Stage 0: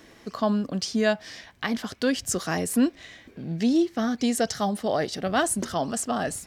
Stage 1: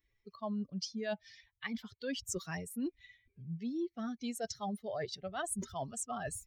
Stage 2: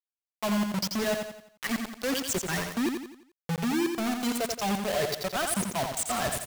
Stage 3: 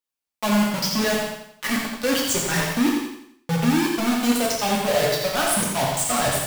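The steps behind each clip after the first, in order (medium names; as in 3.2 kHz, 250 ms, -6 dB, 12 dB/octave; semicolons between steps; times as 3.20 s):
expander on every frequency bin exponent 2; reverse; compression 6:1, threshold -37 dBFS, peak gain reduction 16.5 dB; reverse; trim +1 dB
companded quantiser 2-bit; on a send: feedback delay 86 ms, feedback 42%, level -5.5 dB
gated-style reverb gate 240 ms falling, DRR -2 dB; trim +4 dB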